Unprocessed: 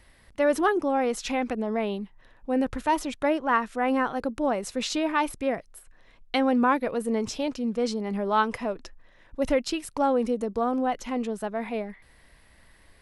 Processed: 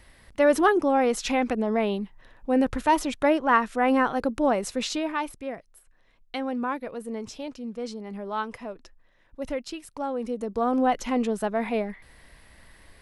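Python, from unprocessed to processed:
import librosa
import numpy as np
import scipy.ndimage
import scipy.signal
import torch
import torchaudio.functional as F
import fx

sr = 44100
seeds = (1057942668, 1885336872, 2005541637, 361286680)

y = fx.gain(x, sr, db=fx.line((4.62, 3.0), (5.43, -7.0), (10.12, -7.0), (10.83, 4.0)))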